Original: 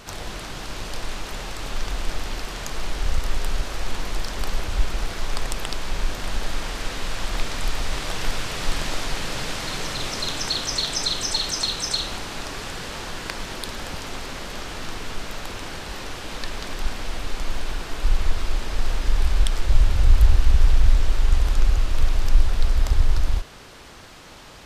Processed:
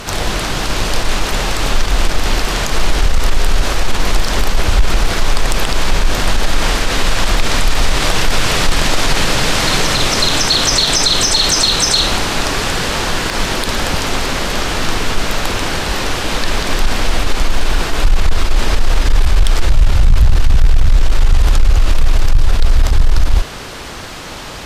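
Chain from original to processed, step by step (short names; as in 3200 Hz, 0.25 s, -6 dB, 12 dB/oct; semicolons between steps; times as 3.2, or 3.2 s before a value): sine folder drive 5 dB, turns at -2.5 dBFS; limiter -9.5 dBFS, peak gain reduction 7 dB; attack slew limiter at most 270 dB/s; gain +6.5 dB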